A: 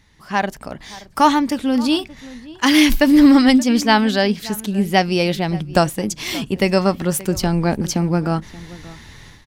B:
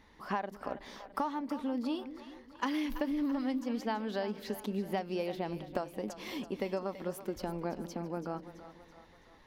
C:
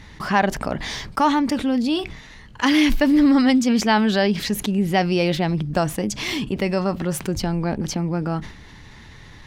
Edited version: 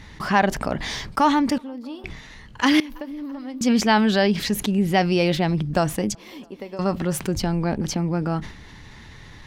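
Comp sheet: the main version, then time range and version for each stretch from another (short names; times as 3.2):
C
1.58–2.04 from B
2.8–3.61 from B
6.15–6.79 from B
not used: A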